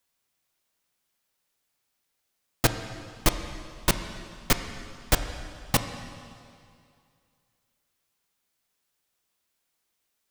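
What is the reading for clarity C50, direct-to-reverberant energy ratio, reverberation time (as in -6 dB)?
9.0 dB, 7.5 dB, 2.3 s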